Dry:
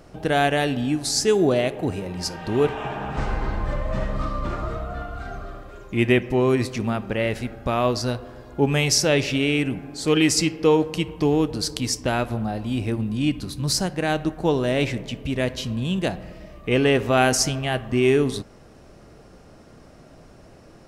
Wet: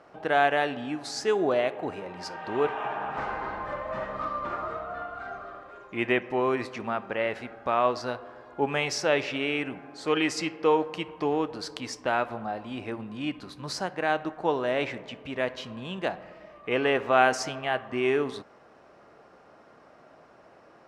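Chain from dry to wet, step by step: band-pass filter 1.1 kHz, Q 0.9; trim +1 dB

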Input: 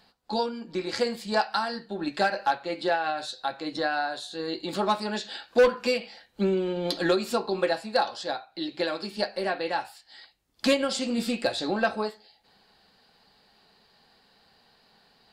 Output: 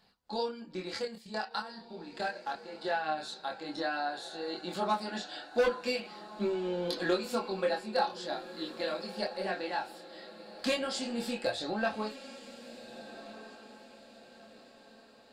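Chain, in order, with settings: 0.97–2.85 s: level held to a coarse grid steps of 13 dB; chorus voices 2, 0.16 Hz, delay 25 ms, depth 2.7 ms; on a send: echo that smears into a reverb 1476 ms, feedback 41%, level -14 dB; on the sum: trim -3 dB

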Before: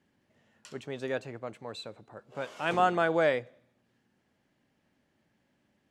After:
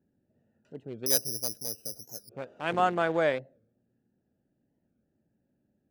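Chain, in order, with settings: local Wiener filter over 41 samples; 1.06–2.30 s: careless resampling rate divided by 8×, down filtered, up zero stuff; warped record 45 rpm, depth 160 cents

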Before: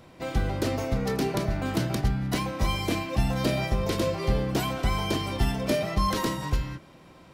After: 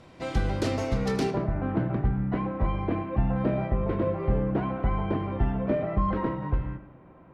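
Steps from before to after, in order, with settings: Bessel low-pass 8 kHz, order 4, from 1.30 s 1.3 kHz; reverberation RT60 0.55 s, pre-delay 63 ms, DRR 12 dB

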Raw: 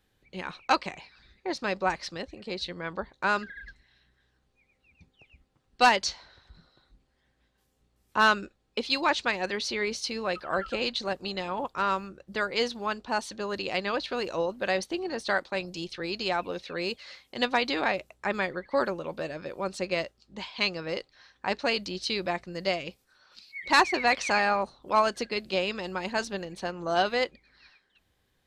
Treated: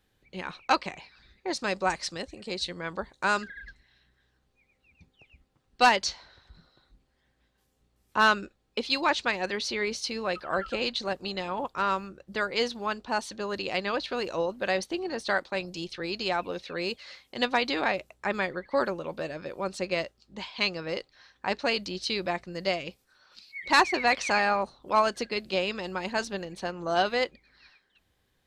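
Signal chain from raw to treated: 1.47–3.48 s: peaking EQ 8.5 kHz +12 dB 1 oct

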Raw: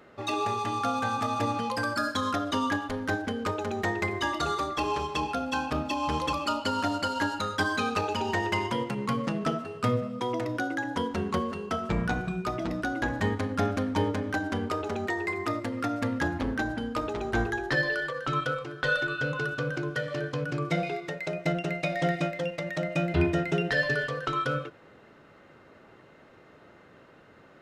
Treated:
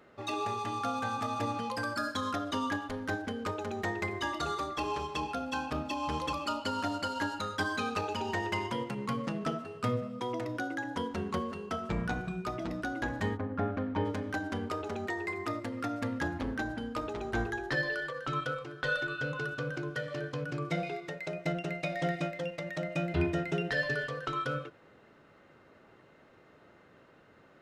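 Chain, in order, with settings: 13.36–14.04 s: low-pass 1.3 kHz -> 2.7 kHz 12 dB/octave; trim -5 dB

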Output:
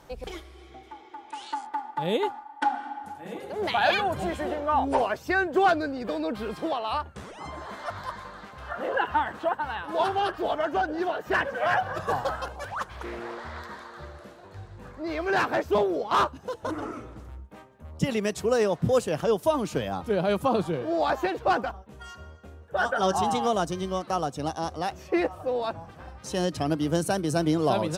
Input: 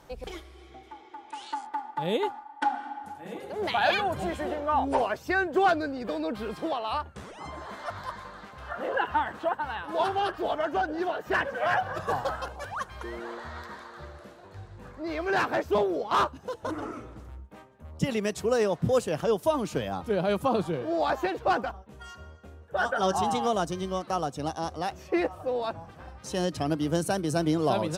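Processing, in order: 12.68–13.60 s: loudspeaker Doppler distortion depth 0.39 ms; trim +1.5 dB

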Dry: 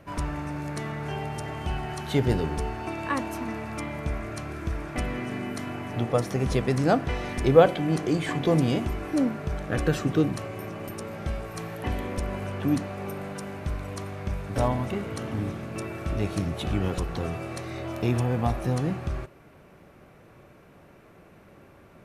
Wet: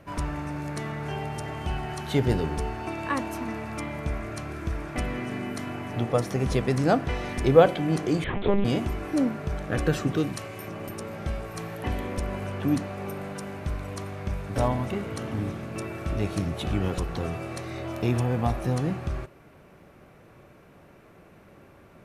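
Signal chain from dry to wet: 8.24–8.65 s: monotone LPC vocoder at 8 kHz 200 Hz; 10.17–10.68 s: tilt shelf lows -4 dB, about 1.5 kHz

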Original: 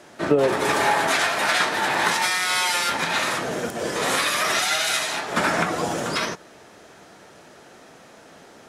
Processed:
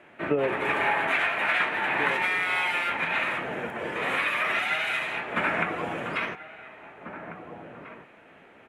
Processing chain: resonant high shelf 3.6 kHz -13.5 dB, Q 3; echo from a far wall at 290 m, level -9 dB; trim -7 dB

